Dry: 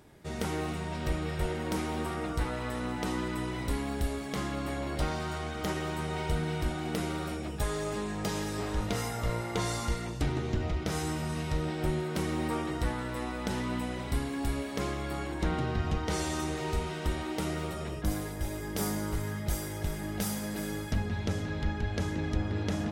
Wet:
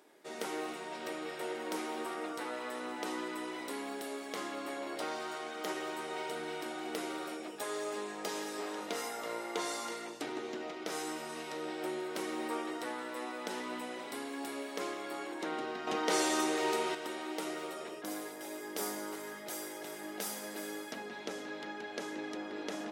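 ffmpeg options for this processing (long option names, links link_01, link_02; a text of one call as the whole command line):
ffmpeg -i in.wav -filter_complex "[0:a]asettb=1/sr,asplit=3[link_01][link_02][link_03];[link_01]atrim=end=15.874[link_04];[link_02]atrim=start=15.87:end=16.95,asetpts=PTS-STARTPTS,afade=type=in:duration=0.004:curve=qsin,afade=type=out:start_time=1.076:duration=0.004:curve=qsin,acontrast=73[link_05];[link_03]atrim=start=16.946[link_06];[link_04][link_05]acrossfade=duration=0.004:curve1=hsin:curve2=qsin[link_07];[link_07][link_06]acrossfade=duration=0.004:curve1=qsin:curve2=hsin,highpass=frequency=300:width=0.5412,highpass=frequency=300:width=1.3066,volume=-3dB" out.wav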